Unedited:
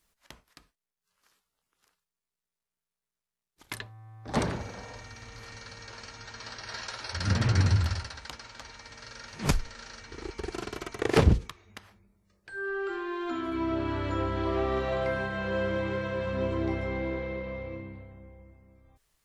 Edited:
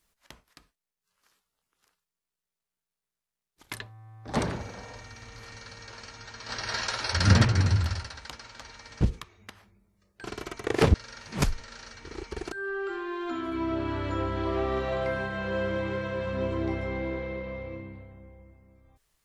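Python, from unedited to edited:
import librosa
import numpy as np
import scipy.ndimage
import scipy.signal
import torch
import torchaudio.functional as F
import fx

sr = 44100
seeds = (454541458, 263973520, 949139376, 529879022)

y = fx.edit(x, sr, fx.clip_gain(start_s=6.49, length_s=0.96, db=7.5),
    fx.swap(start_s=9.01, length_s=1.58, other_s=11.29, other_length_s=1.23), tone=tone)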